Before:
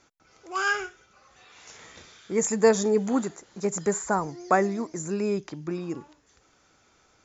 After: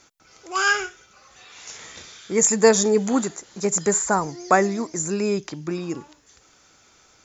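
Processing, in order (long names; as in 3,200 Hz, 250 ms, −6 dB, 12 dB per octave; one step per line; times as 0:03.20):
high-shelf EQ 2,800 Hz +8 dB
level +3.5 dB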